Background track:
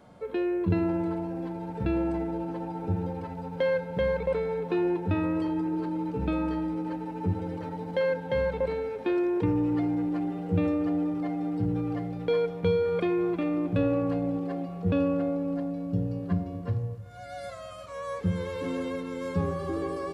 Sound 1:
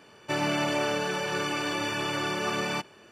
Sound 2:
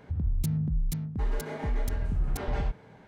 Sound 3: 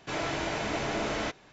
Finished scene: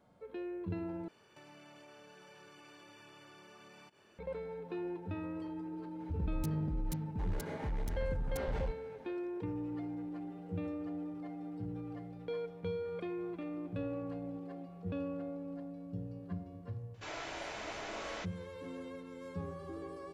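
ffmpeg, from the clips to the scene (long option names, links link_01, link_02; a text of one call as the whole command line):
ffmpeg -i bed.wav -i cue0.wav -i cue1.wav -i cue2.wav -filter_complex "[0:a]volume=-13.5dB[link_01];[1:a]acompressor=threshold=-44dB:ratio=6:attack=3.2:release=140:knee=1:detection=peak[link_02];[2:a]volume=26.5dB,asoftclip=hard,volume=-26.5dB[link_03];[3:a]equalizer=frequency=130:width=0.51:gain=-11[link_04];[link_01]asplit=2[link_05][link_06];[link_05]atrim=end=1.084[link_07];[link_02]atrim=end=3.11,asetpts=PTS-STARTPTS,volume=-11dB[link_08];[link_06]atrim=start=4.186[link_09];[link_03]atrim=end=3.07,asetpts=PTS-STARTPTS,volume=-6dB,afade=type=in:duration=0.004:curve=hsin,afade=type=out:start_time=3.066:duration=0.004:curve=hsin,adelay=6000[link_10];[link_04]atrim=end=1.52,asetpts=PTS-STARTPTS,volume=-9.5dB,afade=type=in:duration=0.004:curve=hsin,afade=type=out:start_time=1.516:duration=0.004:curve=hsin,adelay=16940[link_11];[link_07][link_08]acrossfade=duration=0.004:curve1=hsin:curve2=hsin[link_12];[link_12][link_09]acrossfade=duration=0.004:curve1=hsin:curve2=hsin[link_13];[link_13][link_10][link_11]amix=inputs=3:normalize=0" out.wav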